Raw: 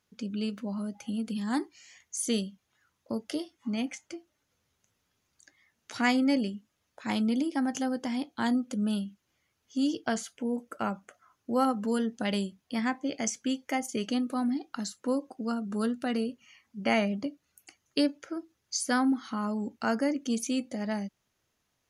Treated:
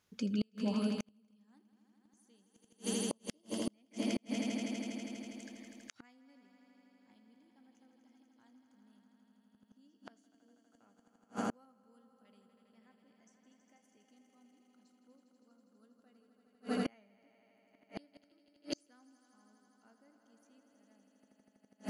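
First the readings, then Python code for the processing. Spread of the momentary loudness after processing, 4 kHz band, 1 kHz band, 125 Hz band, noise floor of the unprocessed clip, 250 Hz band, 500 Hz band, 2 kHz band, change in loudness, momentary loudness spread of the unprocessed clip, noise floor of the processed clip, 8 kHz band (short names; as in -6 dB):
17 LU, -11.0 dB, -17.0 dB, n/a, -78 dBFS, -12.5 dB, -12.5 dB, -16.5 dB, -8.5 dB, 10 LU, -73 dBFS, -11.5 dB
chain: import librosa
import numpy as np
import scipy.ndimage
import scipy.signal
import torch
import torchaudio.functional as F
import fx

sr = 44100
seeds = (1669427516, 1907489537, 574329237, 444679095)

y = fx.echo_swell(x, sr, ms=81, loudest=5, wet_db=-9.5)
y = fx.gate_flip(y, sr, shuts_db=-23.0, range_db=-39)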